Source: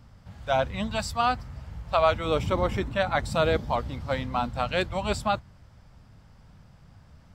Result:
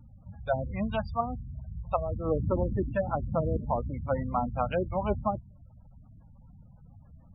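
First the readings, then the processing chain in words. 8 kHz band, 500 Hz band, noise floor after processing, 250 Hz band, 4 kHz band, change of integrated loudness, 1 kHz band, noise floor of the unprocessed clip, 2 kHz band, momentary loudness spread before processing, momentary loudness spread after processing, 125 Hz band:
under -35 dB, -4.0 dB, -55 dBFS, -0.5 dB, under -15 dB, -4.0 dB, -5.5 dB, -54 dBFS, -11.5 dB, 8 LU, 9 LU, 0.0 dB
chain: treble ducked by the level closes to 320 Hz, closed at -19.5 dBFS; spectral gate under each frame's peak -20 dB strong

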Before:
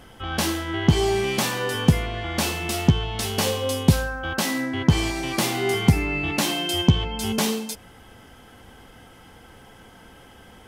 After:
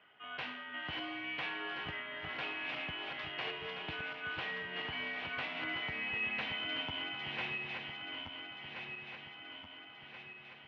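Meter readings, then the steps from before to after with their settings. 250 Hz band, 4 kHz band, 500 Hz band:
-25.0 dB, -12.0 dB, -21.0 dB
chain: regenerating reverse delay 0.689 s, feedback 71%, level -4.5 dB; differentiator; mistuned SSB -79 Hz 170–2800 Hz; gain +1 dB

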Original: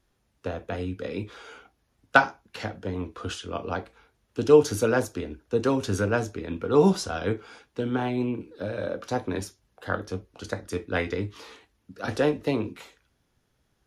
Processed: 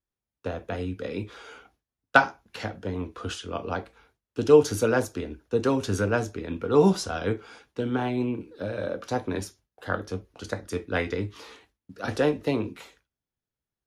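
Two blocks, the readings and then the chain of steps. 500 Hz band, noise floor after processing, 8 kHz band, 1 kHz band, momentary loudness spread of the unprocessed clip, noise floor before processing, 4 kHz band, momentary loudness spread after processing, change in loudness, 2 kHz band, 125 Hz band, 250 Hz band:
0.0 dB, under -85 dBFS, 0.0 dB, 0.0 dB, 16 LU, -72 dBFS, 0.0 dB, 16 LU, 0.0 dB, 0.0 dB, 0.0 dB, 0.0 dB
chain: gate with hold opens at -48 dBFS

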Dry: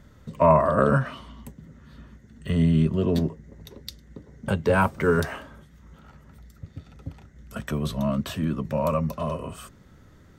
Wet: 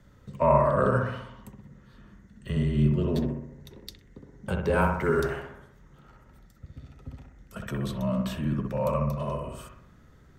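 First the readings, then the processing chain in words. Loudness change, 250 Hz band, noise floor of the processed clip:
-3.0 dB, -4.0 dB, -56 dBFS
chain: frequency shift -17 Hz; analogue delay 63 ms, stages 1024, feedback 54%, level -3.5 dB; gain -5 dB

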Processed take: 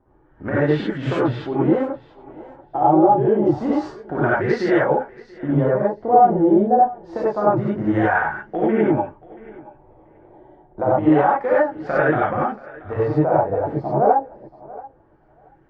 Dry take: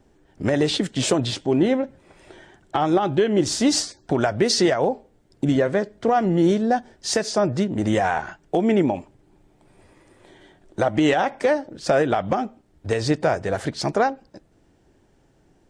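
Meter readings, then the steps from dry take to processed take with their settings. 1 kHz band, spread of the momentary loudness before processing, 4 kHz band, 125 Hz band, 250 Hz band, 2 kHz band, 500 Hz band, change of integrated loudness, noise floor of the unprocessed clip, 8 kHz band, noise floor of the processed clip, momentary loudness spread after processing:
+6.5 dB, 8 LU, under -15 dB, +2.5 dB, +2.0 dB, +3.0 dB, +3.0 dB, +3.0 dB, -60 dBFS, under -25 dB, -54 dBFS, 13 LU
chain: LFO low-pass sine 0.27 Hz 750–1600 Hz; thinning echo 0.681 s, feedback 17%, high-pass 380 Hz, level -19 dB; non-linear reverb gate 0.12 s rising, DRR -7.5 dB; gain -7.5 dB

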